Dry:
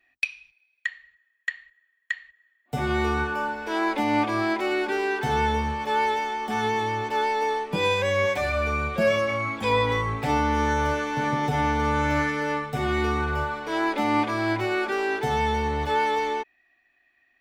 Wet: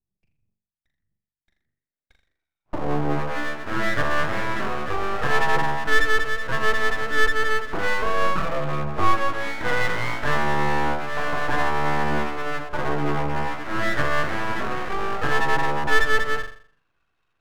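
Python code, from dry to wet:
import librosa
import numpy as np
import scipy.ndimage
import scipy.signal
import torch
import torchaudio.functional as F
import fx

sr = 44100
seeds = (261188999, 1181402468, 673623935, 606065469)

y = fx.room_flutter(x, sr, wall_m=7.1, rt60_s=0.5)
y = fx.filter_sweep_lowpass(y, sr, from_hz=110.0, to_hz=840.0, start_s=1.13, end_s=3.32, q=3.4)
y = np.abs(y)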